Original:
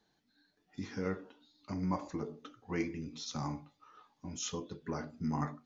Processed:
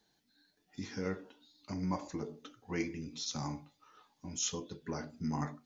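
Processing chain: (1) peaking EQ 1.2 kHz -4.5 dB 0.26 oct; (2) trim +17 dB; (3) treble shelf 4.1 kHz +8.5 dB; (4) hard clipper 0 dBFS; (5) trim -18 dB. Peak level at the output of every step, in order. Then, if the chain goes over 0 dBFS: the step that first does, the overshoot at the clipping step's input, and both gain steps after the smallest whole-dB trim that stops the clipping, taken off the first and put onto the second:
-22.0 dBFS, -5.0 dBFS, -4.5 dBFS, -4.5 dBFS, -22.5 dBFS; nothing clips

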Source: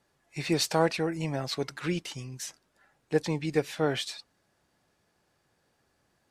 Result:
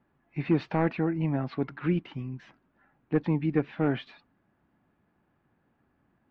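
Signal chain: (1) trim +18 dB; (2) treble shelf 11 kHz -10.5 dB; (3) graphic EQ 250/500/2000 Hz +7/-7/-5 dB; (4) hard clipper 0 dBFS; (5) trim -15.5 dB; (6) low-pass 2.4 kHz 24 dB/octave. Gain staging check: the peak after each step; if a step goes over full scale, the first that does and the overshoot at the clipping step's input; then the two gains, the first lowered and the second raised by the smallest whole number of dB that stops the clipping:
+7.0 dBFS, +7.0 dBFS, +6.0 dBFS, 0.0 dBFS, -15.5 dBFS, -15.0 dBFS; step 1, 6.0 dB; step 1 +12 dB, step 5 -9.5 dB

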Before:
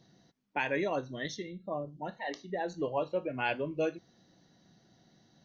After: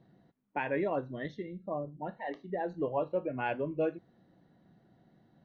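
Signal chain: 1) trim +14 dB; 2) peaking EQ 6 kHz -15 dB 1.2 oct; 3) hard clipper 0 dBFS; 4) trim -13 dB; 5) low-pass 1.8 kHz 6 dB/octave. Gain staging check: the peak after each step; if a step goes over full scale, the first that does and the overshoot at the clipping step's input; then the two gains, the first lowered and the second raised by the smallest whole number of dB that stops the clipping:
-3.5 dBFS, -5.0 dBFS, -5.0 dBFS, -18.0 dBFS, -19.5 dBFS; nothing clips

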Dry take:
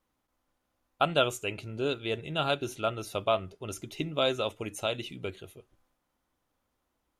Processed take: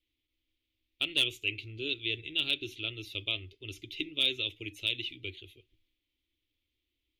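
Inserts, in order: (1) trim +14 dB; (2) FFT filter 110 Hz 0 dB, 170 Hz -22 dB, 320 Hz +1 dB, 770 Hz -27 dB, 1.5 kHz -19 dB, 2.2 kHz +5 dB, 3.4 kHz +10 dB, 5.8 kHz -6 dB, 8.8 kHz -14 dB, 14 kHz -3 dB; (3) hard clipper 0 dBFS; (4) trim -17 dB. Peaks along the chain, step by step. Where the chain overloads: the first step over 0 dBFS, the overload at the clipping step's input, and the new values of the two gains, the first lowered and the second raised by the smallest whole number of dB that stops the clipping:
+4.5 dBFS, +6.5 dBFS, 0.0 dBFS, -17.0 dBFS; step 1, 6.5 dB; step 1 +7 dB, step 4 -10 dB

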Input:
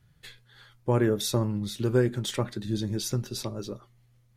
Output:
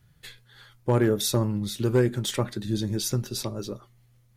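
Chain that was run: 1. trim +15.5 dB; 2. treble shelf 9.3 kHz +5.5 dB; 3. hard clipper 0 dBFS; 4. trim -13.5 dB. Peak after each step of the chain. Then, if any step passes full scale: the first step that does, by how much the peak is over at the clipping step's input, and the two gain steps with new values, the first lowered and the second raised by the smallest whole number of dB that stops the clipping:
+3.5 dBFS, +3.5 dBFS, 0.0 dBFS, -13.5 dBFS; step 1, 3.5 dB; step 1 +11.5 dB, step 4 -9.5 dB

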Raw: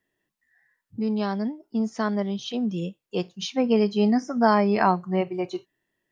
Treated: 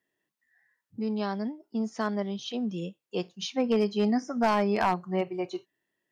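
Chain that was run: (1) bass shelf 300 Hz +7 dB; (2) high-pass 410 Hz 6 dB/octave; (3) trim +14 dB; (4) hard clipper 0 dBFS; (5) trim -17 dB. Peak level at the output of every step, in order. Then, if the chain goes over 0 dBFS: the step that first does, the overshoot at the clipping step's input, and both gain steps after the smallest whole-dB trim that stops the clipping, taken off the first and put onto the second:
-5.5 dBFS, -6.0 dBFS, +8.0 dBFS, 0.0 dBFS, -17.0 dBFS; step 3, 8.0 dB; step 3 +6 dB, step 5 -9 dB

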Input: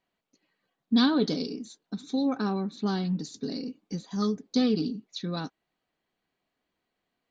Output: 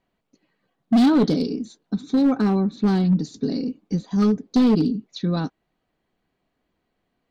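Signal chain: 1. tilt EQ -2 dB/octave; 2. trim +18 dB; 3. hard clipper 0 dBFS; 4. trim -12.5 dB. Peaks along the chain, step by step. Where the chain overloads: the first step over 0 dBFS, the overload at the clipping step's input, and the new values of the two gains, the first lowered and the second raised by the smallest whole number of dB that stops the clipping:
-9.5 dBFS, +8.5 dBFS, 0.0 dBFS, -12.5 dBFS; step 2, 8.5 dB; step 2 +9 dB, step 4 -3.5 dB

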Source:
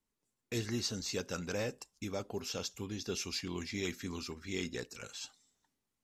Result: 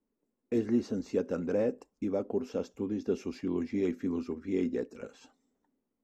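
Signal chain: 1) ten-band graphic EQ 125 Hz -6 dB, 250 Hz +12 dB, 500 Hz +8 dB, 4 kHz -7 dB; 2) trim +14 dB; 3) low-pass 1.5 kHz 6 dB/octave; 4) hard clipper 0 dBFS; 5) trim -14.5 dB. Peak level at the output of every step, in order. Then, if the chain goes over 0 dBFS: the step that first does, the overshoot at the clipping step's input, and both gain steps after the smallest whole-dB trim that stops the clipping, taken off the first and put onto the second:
-16.5 dBFS, -2.5 dBFS, -3.0 dBFS, -3.0 dBFS, -17.5 dBFS; nothing clips

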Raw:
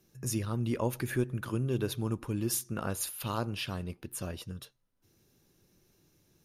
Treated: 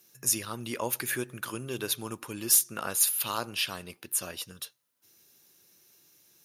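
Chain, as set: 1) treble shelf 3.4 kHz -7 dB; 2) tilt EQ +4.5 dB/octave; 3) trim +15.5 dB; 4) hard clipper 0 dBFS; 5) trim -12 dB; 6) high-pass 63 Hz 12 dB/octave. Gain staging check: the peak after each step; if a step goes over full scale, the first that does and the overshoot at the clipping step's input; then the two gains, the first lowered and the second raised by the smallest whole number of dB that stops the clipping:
-18.0 dBFS, -11.0 dBFS, +4.5 dBFS, 0.0 dBFS, -12.0 dBFS, -12.0 dBFS; step 3, 4.5 dB; step 3 +10.5 dB, step 5 -7 dB

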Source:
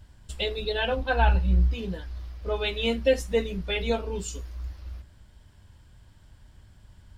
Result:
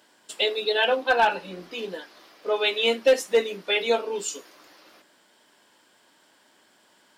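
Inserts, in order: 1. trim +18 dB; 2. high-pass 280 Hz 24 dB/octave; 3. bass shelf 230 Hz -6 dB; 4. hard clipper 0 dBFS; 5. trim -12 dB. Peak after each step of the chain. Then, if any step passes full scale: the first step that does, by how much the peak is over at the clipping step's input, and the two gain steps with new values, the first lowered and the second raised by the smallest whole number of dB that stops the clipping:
+7.5 dBFS, +7.0 dBFS, +6.0 dBFS, 0.0 dBFS, -12.0 dBFS; step 1, 6.0 dB; step 1 +12 dB, step 5 -6 dB

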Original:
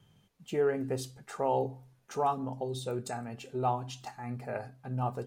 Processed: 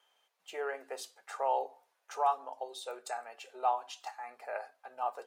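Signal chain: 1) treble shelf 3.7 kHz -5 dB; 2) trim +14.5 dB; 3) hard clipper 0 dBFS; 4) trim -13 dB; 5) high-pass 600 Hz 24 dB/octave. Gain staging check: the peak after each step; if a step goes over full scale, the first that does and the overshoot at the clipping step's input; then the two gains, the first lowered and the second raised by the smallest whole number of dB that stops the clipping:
-18.5 dBFS, -4.0 dBFS, -4.0 dBFS, -17.0 dBFS, -18.0 dBFS; nothing clips

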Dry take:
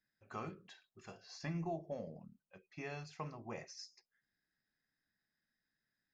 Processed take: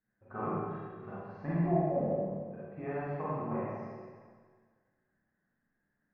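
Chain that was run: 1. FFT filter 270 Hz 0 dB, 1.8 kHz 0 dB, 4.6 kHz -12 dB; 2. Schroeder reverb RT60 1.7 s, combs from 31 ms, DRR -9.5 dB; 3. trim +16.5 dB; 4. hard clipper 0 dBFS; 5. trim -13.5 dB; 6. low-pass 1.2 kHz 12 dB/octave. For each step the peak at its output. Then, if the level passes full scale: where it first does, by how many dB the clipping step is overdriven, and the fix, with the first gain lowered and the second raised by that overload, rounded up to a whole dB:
-30.5 dBFS, -20.0 dBFS, -3.5 dBFS, -3.5 dBFS, -17.0 dBFS, -17.5 dBFS; nothing clips

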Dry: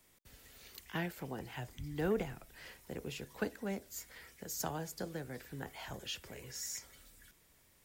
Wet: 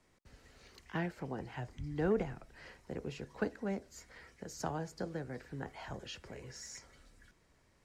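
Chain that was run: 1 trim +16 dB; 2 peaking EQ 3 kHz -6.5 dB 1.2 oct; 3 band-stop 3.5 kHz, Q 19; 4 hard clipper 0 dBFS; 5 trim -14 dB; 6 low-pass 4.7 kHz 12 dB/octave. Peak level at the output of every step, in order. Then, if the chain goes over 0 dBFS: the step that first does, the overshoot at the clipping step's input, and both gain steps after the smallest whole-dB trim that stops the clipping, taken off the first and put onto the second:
-5.5 dBFS, -6.0 dBFS, -6.0 dBFS, -6.0 dBFS, -20.0 dBFS, -20.0 dBFS; nothing clips

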